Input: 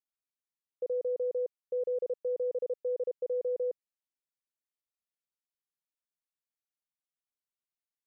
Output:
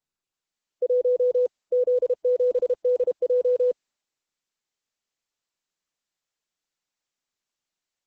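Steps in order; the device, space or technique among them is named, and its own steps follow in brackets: noise-suppressed video call (HPF 160 Hz 24 dB/oct; spectral gate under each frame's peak -30 dB strong; AGC gain up to 10.5 dB; Opus 12 kbps 48000 Hz)

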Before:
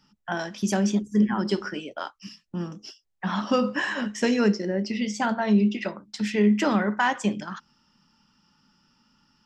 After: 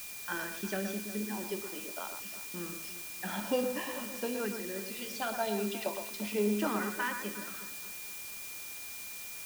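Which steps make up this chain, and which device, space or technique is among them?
4.88–6.1 ten-band EQ 125 Hz -12 dB, 250 Hz -4 dB, 1000 Hz +8 dB, 2000 Hz -12 dB, 4000 Hz +11 dB; shortwave radio (BPF 340–2700 Hz; tremolo 0.34 Hz, depth 54%; LFO notch saw up 0.45 Hz 570–2200 Hz; whine 2400 Hz -47 dBFS; white noise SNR 11 dB); tone controls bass +1 dB, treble +6 dB; echo with dull and thin repeats by turns 0.119 s, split 2100 Hz, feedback 65%, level -7 dB; gain -3 dB

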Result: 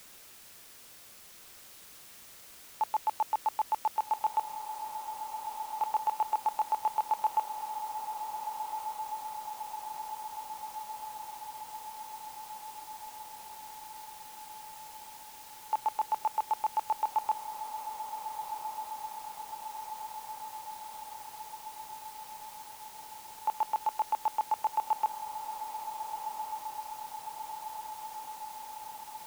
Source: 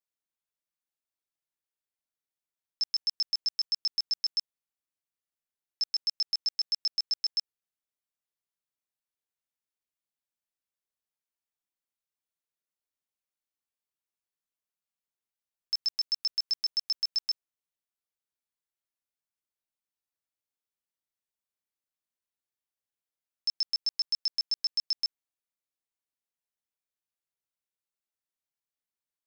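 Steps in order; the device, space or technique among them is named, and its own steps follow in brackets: split-band scrambled radio (four-band scrambler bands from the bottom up 4321; BPF 400–2800 Hz; white noise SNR 14 dB); diffused feedback echo 1.557 s, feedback 71%, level -7 dB

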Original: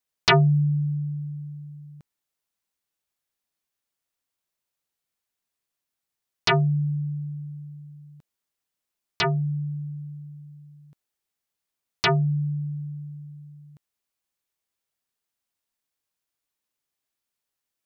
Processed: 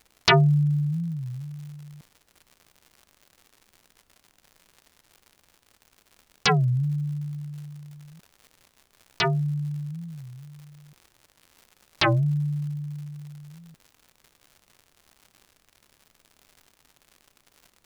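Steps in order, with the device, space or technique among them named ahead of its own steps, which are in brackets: warped LP (record warp 33 1/3 rpm, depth 250 cents; crackle 150/s -40 dBFS; pink noise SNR 40 dB)

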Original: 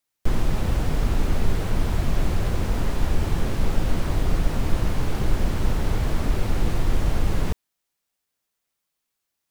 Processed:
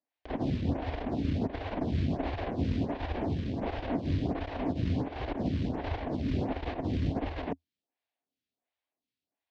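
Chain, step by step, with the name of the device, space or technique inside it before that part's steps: vibe pedal into a guitar amplifier (photocell phaser 1.4 Hz; tube stage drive 13 dB, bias 0.65; speaker cabinet 78–4200 Hz, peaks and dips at 82 Hz +7 dB, 270 Hz +10 dB, 690 Hz +7 dB, 1300 Hz -9 dB)

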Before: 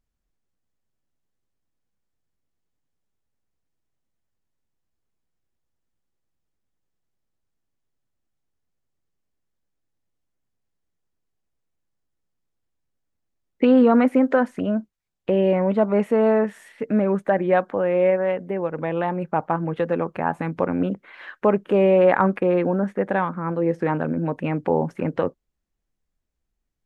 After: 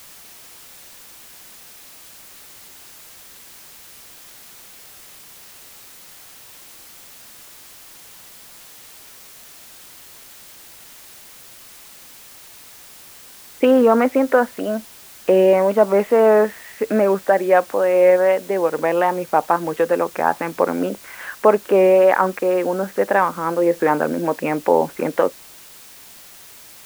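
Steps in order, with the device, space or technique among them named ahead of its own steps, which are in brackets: dictaphone (BPF 360–3000 Hz; AGC; wow and flutter; white noise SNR 22 dB); gain -1 dB

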